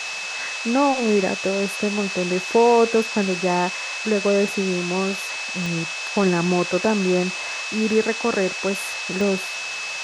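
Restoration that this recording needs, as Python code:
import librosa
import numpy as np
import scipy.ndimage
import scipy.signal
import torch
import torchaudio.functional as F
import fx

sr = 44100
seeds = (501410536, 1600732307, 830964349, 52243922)

y = fx.fix_declick_ar(x, sr, threshold=10.0)
y = fx.notch(y, sr, hz=2600.0, q=30.0)
y = fx.noise_reduce(y, sr, print_start_s=9.48, print_end_s=9.98, reduce_db=30.0)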